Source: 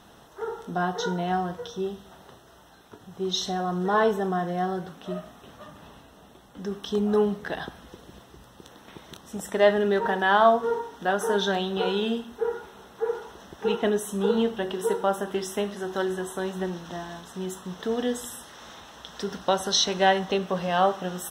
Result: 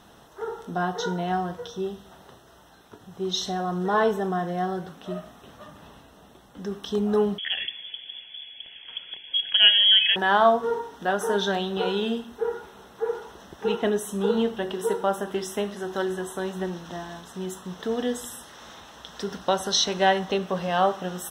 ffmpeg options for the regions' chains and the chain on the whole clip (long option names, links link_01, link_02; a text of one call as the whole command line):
ffmpeg -i in.wav -filter_complex "[0:a]asettb=1/sr,asplit=3[link_01][link_02][link_03];[link_01]atrim=end=7.384[link_04];[link_02]atrim=start=7.38:end=10.16,asetpts=PTS-STARTPTS,afade=type=in:duration=0.004:curve=qsin,afade=type=out:start_time=2.776:duration=0.004:curve=qsin,equalizer=frequency=130:width_type=o:width=2.7:gain=11,aphaser=in_gain=1:out_gain=1:delay=1.6:decay=0.23:speed=1.9:type=triangular,lowpass=frequency=3000:width_type=q:width=0.5098,lowpass=frequency=3000:width_type=q:width=0.6013,lowpass=frequency=3000:width_type=q:width=0.9,lowpass=frequency=3000:width_type=q:width=2.563,afreqshift=-3500[link_05];[link_03]atrim=start=10.156[link_06];[link_04][link_05]acrossfade=duration=0.004:curve1=hsin:curve2=qsin[link_07];[link_07][link_06]acrossfade=duration=0.004:curve1=qsin:curve2=hsin" out.wav